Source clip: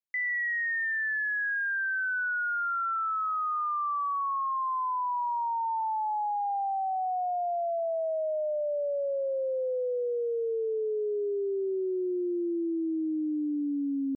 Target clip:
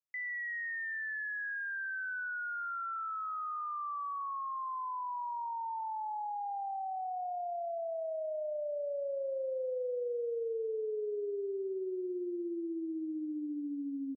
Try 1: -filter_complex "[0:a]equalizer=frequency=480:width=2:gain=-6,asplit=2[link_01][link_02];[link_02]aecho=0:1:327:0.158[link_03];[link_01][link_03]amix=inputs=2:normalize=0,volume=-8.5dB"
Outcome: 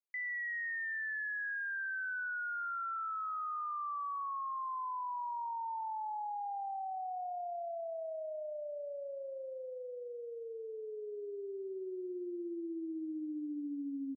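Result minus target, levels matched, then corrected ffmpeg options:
500 Hz band −3.5 dB
-filter_complex "[0:a]equalizer=frequency=480:width=2:gain=3,asplit=2[link_01][link_02];[link_02]aecho=0:1:327:0.158[link_03];[link_01][link_03]amix=inputs=2:normalize=0,volume=-8.5dB"

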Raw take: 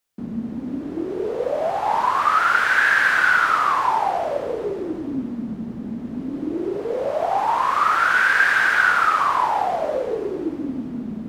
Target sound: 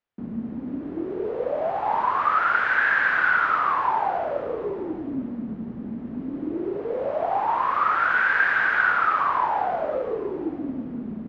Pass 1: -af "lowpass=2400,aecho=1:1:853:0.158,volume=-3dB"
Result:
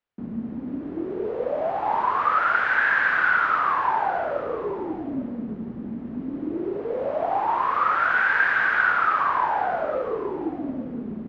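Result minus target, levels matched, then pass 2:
echo-to-direct +8 dB
-af "lowpass=2400,aecho=1:1:853:0.0631,volume=-3dB"

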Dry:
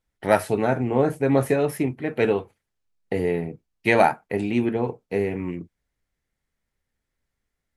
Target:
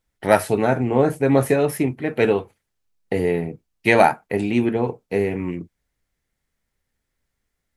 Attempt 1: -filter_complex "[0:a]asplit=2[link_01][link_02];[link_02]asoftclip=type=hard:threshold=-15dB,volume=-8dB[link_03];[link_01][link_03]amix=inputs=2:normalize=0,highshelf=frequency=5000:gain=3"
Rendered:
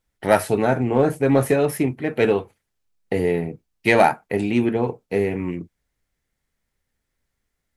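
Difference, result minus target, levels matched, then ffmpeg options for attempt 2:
hard clipping: distortion +38 dB
-filter_complex "[0:a]asplit=2[link_01][link_02];[link_02]asoftclip=type=hard:threshold=-5dB,volume=-8dB[link_03];[link_01][link_03]amix=inputs=2:normalize=0,highshelf=frequency=5000:gain=3"

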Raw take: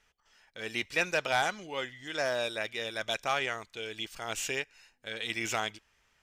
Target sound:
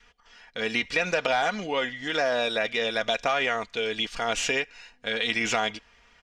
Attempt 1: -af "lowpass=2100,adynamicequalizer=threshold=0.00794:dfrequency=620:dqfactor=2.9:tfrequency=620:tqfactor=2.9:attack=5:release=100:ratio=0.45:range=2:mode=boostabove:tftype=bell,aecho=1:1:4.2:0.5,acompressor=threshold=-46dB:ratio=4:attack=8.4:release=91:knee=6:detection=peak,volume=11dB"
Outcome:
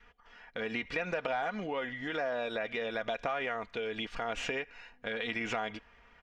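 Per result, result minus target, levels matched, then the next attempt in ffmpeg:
downward compressor: peak gain reduction +8 dB; 4,000 Hz band −4.5 dB
-af "lowpass=2100,adynamicequalizer=threshold=0.00794:dfrequency=620:dqfactor=2.9:tfrequency=620:tqfactor=2.9:attack=5:release=100:ratio=0.45:range=2:mode=boostabove:tftype=bell,aecho=1:1:4.2:0.5,acompressor=threshold=-34.5dB:ratio=4:attack=8.4:release=91:knee=6:detection=peak,volume=11dB"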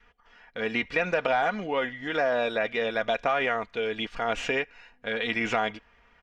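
4,000 Hz band −5.5 dB
-af "lowpass=5100,adynamicequalizer=threshold=0.00794:dfrequency=620:dqfactor=2.9:tfrequency=620:tqfactor=2.9:attack=5:release=100:ratio=0.45:range=2:mode=boostabove:tftype=bell,aecho=1:1:4.2:0.5,acompressor=threshold=-34.5dB:ratio=4:attack=8.4:release=91:knee=6:detection=peak,volume=11dB"

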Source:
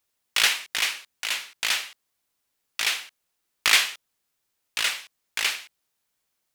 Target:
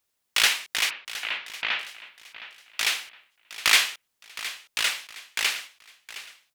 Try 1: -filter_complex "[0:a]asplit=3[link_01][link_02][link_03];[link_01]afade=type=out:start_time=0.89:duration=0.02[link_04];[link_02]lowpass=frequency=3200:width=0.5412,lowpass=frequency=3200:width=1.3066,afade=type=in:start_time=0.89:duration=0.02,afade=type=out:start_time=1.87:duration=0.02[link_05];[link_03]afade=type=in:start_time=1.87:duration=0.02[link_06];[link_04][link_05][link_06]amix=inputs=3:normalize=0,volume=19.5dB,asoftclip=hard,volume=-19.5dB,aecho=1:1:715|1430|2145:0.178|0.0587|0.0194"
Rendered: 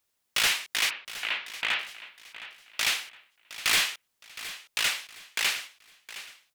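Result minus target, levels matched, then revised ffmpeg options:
gain into a clipping stage and back: distortion +20 dB
-filter_complex "[0:a]asplit=3[link_01][link_02][link_03];[link_01]afade=type=out:start_time=0.89:duration=0.02[link_04];[link_02]lowpass=frequency=3200:width=0.5412,lowpass=frequency=3200:width=1.3066,afade=type=in:start_time=0.89:duration=0.02,afade=type=out:start_time=1.87:duration=0.02[link_05];[link_03]afade=type=in:start_time=1.87:duration=0.02[link_06];[link_04][link_05][link_06]amix=inputs=3:normalize=0,volume=7.5dB,asoftclip=hard,volume=-7.5dB,aecho=1:1:715|1430|2145:0.178|0.0587|0.0194"

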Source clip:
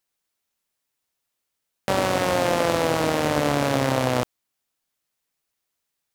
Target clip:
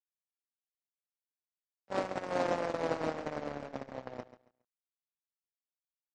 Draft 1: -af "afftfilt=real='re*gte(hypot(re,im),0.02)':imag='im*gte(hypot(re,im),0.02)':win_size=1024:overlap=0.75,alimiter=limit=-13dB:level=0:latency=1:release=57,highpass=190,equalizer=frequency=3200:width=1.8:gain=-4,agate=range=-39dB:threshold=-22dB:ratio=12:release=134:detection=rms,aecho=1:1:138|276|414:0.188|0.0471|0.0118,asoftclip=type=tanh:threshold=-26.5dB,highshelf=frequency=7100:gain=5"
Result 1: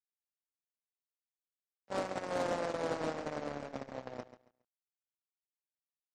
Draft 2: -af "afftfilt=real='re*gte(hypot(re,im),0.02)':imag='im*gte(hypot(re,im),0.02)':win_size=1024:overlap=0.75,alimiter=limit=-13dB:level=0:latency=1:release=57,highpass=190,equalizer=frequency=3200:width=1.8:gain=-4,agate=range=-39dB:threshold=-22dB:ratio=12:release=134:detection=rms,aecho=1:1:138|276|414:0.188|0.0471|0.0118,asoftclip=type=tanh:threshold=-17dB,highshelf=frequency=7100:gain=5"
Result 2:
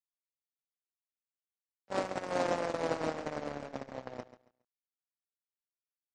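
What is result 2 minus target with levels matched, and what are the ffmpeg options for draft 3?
8,000 Hz band +4.0 dB
-af "afftfilt=real='re*gte(hypot(re,im),0.02)':imag='im*gte(hypot(re,im),0.02)':win_size=1024:overlap=0.75,alimiter=limit=-13dB:level=0:latency=1:release=57,highpass=190,equalizer=frequency=3200:width=1.8:gain=-4,agate=range=-39dB:threshold=-22dB:ratio=12:release=134:detection=rms,aecho=1:1:138|276|414:0.188|0.0471|0.0118,asoftclip=type=tanh:threshold=-17dB,highshelf=frequency=7100:gain=-4.5"

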